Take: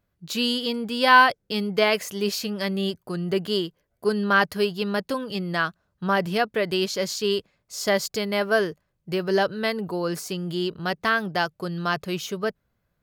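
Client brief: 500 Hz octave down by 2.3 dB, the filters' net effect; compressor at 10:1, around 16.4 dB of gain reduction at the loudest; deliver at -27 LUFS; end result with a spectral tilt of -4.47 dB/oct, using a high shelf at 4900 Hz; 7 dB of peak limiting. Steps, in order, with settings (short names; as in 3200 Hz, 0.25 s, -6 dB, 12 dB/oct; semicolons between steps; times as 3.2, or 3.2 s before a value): bell 500 Hz -3 dB; high shelf 4900 Hz -3.5 dB; compressor 10:1, threshold -27 dBFS; gain +7 dB; limiter -17 dBFS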